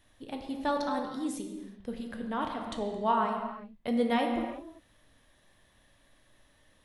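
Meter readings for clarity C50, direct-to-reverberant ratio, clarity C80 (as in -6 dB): 4.0 dB, 2.0 dB, 5.5 dB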